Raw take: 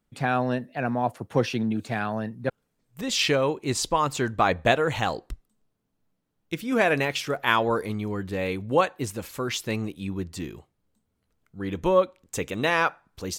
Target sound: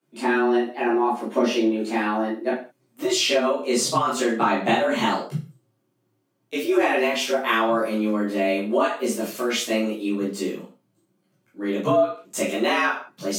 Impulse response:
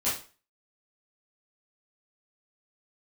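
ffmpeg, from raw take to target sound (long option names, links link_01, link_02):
-filter_complex "[1:a]atrim=start_sample=2205,afade=type=out:start_time=0.27:duration=0.01,atrim=end_sample=12348[link_01];[0:a][link_01]afir=irnorm=-1:irlink=0,acrossover=split=190[link_02][link_03];[link_03]acompressor=threshold=-17dB:ratio=3[link_04];[link_02][link_04]amix=inputs=2:normalize=0,afreqshift=110,volume=-2.5dB"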